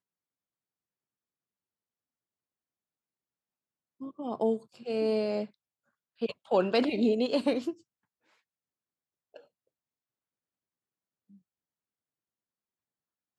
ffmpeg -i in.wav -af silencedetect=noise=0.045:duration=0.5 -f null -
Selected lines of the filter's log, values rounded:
silence_start: 0.00
silence_end: 4.26 | silence_duration: 4.26
silence_start: 5.42
silence_end: 6.22 | silence_duration: 0.80
silence_start: 7.70
silence_end: 13.39 | silence_duration: 5.69